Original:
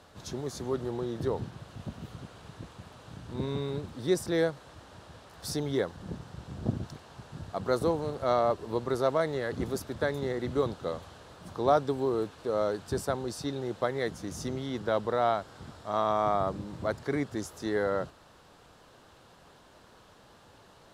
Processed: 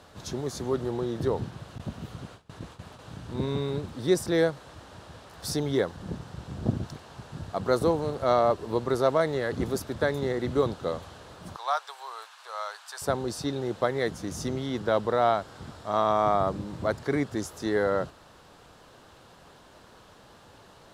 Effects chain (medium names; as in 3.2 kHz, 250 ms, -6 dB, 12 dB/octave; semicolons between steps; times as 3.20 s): 1.78–2.99 s: gate with hold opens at -37 dBFS; 11.56–13.02 s: inverse Chebyshev high-pass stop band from 260 Hz, stop band 60 dB; trim +3.5 dB